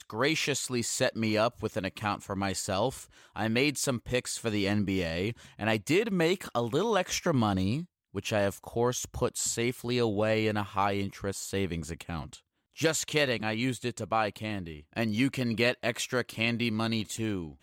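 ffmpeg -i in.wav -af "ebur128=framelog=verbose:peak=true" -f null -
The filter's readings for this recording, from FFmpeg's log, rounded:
Integrated loudness:
  I:         -29.9 LUFS
  Threshold: -40.1 LUFS
Loudness range:
  LRA:         2.3 LU
  Threshold: -50.2 LUFS
  LRA low:   -31.3 LUFS
  LRA high:  -29.0 LUFS
True peak:
  Peak:      -12.2 dBFS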